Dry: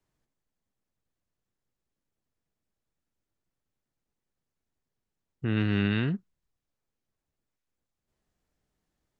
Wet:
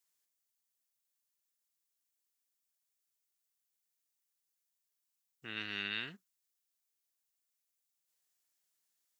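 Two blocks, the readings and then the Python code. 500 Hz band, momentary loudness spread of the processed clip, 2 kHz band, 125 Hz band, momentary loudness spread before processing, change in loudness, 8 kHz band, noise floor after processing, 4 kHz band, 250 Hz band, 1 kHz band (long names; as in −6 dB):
−18.0 dB, 9 LU, −4.5 dB, −28.5 dB, 10 LU, −11.0 dB, can't be measured, −85 dBFS, −0.5 dB, −23.0 dB, −9.0 dB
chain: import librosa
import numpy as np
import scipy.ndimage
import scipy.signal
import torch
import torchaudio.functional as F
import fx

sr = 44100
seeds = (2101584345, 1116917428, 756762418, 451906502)

y = np.diff(x, prepend=0.0)
y = y * librosa.db_to_amplitude(6.5)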